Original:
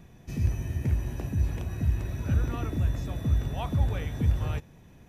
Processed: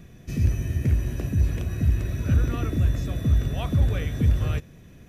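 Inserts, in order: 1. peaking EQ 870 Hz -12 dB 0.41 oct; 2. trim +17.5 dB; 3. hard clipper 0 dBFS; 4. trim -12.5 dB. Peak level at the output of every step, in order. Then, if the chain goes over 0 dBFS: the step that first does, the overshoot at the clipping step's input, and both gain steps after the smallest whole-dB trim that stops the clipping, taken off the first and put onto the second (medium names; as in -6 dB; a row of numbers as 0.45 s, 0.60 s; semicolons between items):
-12.0 dBFS, +5.5 dBFS, 0.0 dBFS, -12.5 dBFS; step 2, 5.5 dB; step 2 +11.5 dB, step 4 -6.5 dB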